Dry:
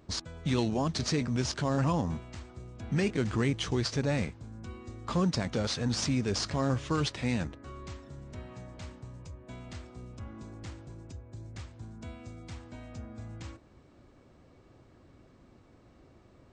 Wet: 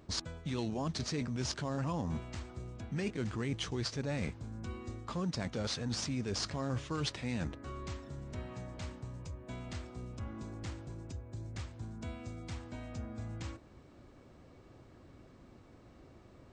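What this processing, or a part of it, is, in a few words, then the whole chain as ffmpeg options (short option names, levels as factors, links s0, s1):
compression on the reversed sound: -af "areverse,acompressor=threshold=0.02:ratio=6,areverse,volume=1.12"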